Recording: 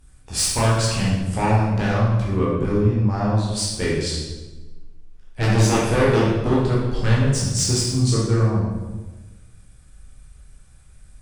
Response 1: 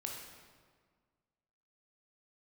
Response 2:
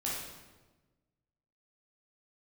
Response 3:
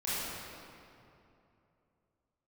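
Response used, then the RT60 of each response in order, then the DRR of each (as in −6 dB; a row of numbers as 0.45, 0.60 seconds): 2; 1.7, 1.2, 2.8 seconds; −0.5, −6.5, −11.5 decibels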